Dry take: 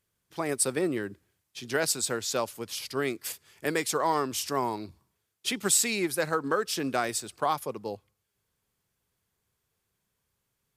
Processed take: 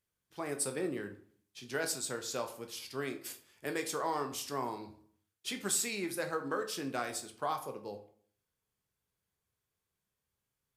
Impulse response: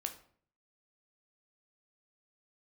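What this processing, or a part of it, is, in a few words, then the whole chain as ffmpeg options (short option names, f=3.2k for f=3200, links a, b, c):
bathroom: -filter_complex "[1:a]atrim=start_sample=2205[a];[0:a][a]afir=irnorm=-1:irlink=0,volume=-7dB"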